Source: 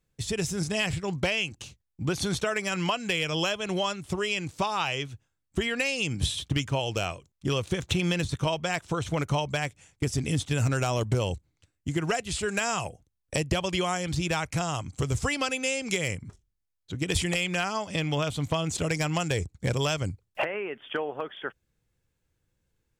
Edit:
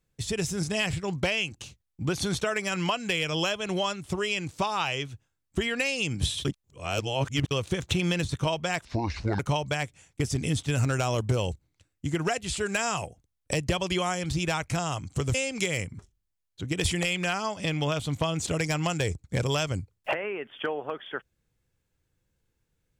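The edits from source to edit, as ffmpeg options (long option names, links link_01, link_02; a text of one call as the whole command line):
ffmpeg -i in.wav -filter_complex "[0:a]asplit=6[link_01][link_02][link_03][link_04][link_05][link_06];[link_01]atrim=end=6.452[link_07];[link_02]atrim=start=6.448:end=7.512,asetpts=PTS-STARTPTS,areverse[link_08];[link_03]atrim=start=7.508:end=8.854[link_09];[link_04]atrim=start=8.85:end=9.22,asetpts=PTS-STARTPTS,asetrate=29988,aresample=44100[link_10];[link_05]atrim=start=9.216:end=15.172[link_11];[link_06]atrim=start=15.648[link_12];[link_07][link_08]acrossfade=duration=0.004:curve1=hsin:curve2=hsin[link_13];[link_13][link_09]acrossfade=duration=0.004:curve1=hsin:curve2=hsin[link_14];[link_14][link_10]acrossfade=duration=0.004:curve1=hsin:curve2=hsin[link_15];[link_15][link_11]acrossfade=duration=0.004:curve1=hsin:curve2=hsin[link_16];[link_16][link_12]acrossfade=duration=0.004:curve1=hsin:curve2=hsin" out.wav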